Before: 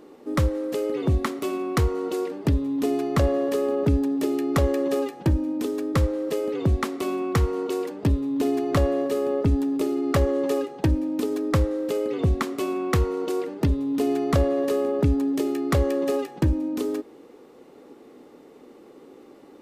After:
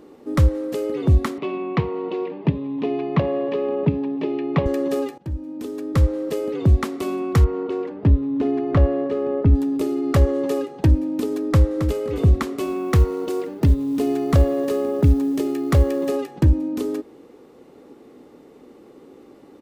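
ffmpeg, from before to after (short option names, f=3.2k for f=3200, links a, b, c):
-filter_complex "[0:a]asettb=1/sr,asplit=3[a][b][c];[a]atrim=end=1.384[d];[b]atrim=start=1.38:end=4.66,asetpts=PTS-STARTPTS,afade=t=in:d=0.004:c=qsin,afade=t=out:st=3.276:d=0.004:c=qsin,highpass=f=130:w=0.5412,highpass=f=130:w=1.3066,equalizer=f=160:t=q:w=4:g=5,equalizer=f=270:t=q:w=4:g=-4,equalizer=f=980:t=q:w=4:g=6,equalizer=f=1.4k:t=q:w=4:g=-8,equalizer=f=2.5k:t=q:w=4:g=5,lowpass=f=3.5k:w=0.5412,lowpass=f=3.5k:w=1.3066[e];[c]atrim=start=4.656[f];[d][e]acrossfade=d=0.004:c1=hsin:c2=qsin[g];[g][f]acrossfade=d=0.004:c1=qsin:c2=hsin,asettb=1/sr,asplit=3[h][i][j];[h]atrim=end=7.444[k];[i]atrim=start=7.44:end=9.55,asetpts=PTS-STARTPTS,afade=t=in:d=0.004:c=qsin,afade=t=out:st=2.106:d=0.004:c=qsin,lowpass=2.5k[l];[j]atrim=start=9.546[m];[k][l]acrossfade=d=0.004:c1=hsin:c2=qsin[n];[n][m]acrossfade=d=0.004:c1=qsin:c2=hsin,asplit=2[o][p];[p]afade=t=in:st=11.5:d=0.01,afade=t=out:st=12.03:d=0.01,aecho=0:1:270|540|810|1080:0.375837|0.112751|0.0338254|0.0101476[q];[o][q]amix=inputs=2:normalize=0,asettb=1/sr,asplit=3[r][s][t];[r]atrim=end=12.624[u];[s]atrim=start=12.62:end=16.1,asetpts=PTS-STARTPTS,afade=t=in:d=0.004:c=qsin,afade=t=out:st=3.476:d=0.004:c=qsin,acrusher=bits=8:mode=log:mix=0:aa=0.000001[v];[t]atrim=start=16.096[w];[u][v]acrossfade=d=0.004:c1=hsin:c2=qsin[x];[x][w]acrossfade=d=0.004:c1=qsin:c2=hsin,asplit=2[y][z];[y]atrim=end=5.18,asetpts=PTS-STARTPTS,afade=t=out:st=5.176:d=0.004:c=hsin:silence=0.105925[aa];[z]atrim=start=5.18,asetpts=PTS-STARTPTS,afade=t=in:d=0.99:silence=0.105925[ab];[aa][ab]concat=n=2:v=0:a=1,equalizer=f=67:w=0.38:g=7.5"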